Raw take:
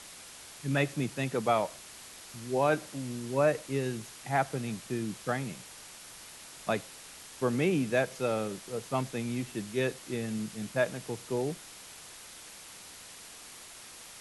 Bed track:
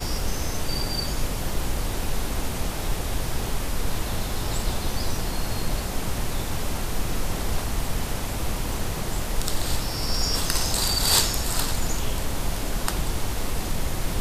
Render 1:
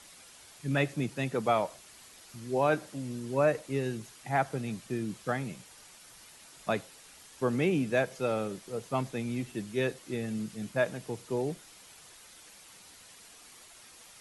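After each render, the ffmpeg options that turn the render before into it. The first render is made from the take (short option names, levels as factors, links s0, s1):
-af "afftdn=nr=7:nf=-49"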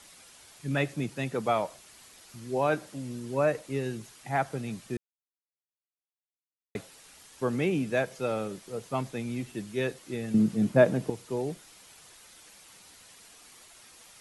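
-filter_complex "[0:a]asettb=1/sr,asplit=3[s0][s1][s2];[s0]atrim=end=10.344[s3];[s1]atrim=start=10.34:end=11.1,asetpts=PTS-STARTPTS,afade=t=in:d=0.004:c=qsin,afade=t=out:st=0.756:d=0.004:c=qsin,equalizer=f=240:w=0.31:g=13[s4];[s2]atrim=start=11.096[s5];[s3][s4]acrossfade=d=0.004:c1=hsin:c2=qsin[s6];[s6][s5]acrossfade=d=0.004:c1=qsin:c2=hsin,asplit=3[s7][s8][s9];[s7]atrim=end=4.97,asetpts=PTS-STARTPTS,afade=t=out:st=4.966:d=0.004:c=hsin[s10];[s8]atrim=start=4.97:end=6.75,asetpts=PTS-STARTPTS,volume=0[s11];[s9]atrim=start=6.75,asetpts=PTS-STARTPTS,afade=t=in:d=0.004:c=hsin[s12];[s10][s11][s12]concat=n=3:v=0:a=1"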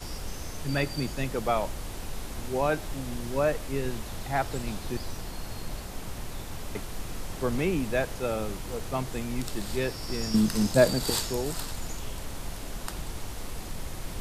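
-filter_complex "[1:a]volume=0.316[s0];[0:a][s0]amix=inputs=2:normalize=0"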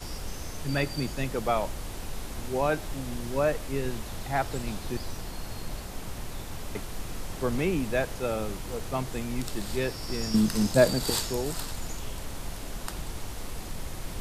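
-af anull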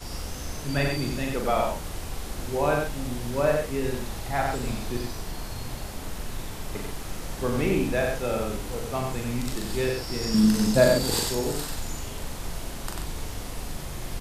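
-filter_complex "[0:a]asplit=2[s0][s1];[s1]adelay=41,volume=0.596[s2];[s0][s2]amix=inputs=2:normalize=0,aecho=1:1:93:0.631"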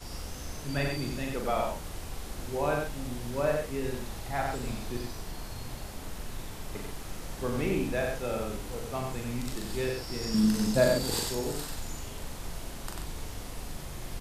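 -af "volume=0.562"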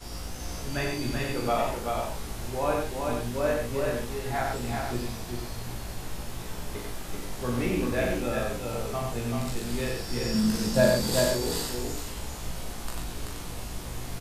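-filter_complex "[0:a]asplit=2[s0][s1];[s1]adelay=17,volume=0.75[s2];[s0][s2]amix=inputs=2:normalize=0,aecho=1:1:384:0.631"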